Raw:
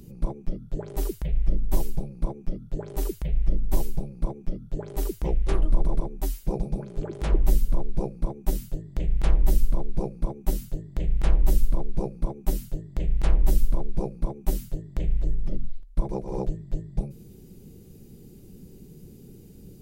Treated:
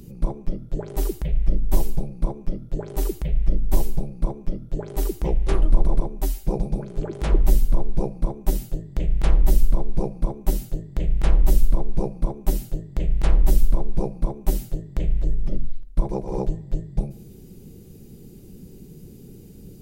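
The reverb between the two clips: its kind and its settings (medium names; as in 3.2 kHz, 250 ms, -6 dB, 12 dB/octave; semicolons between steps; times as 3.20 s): algorithmic reverb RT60 0.72 s, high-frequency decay 0.75×, pre-delay 5 ms, DRR 18 dB; trim +3.5 dB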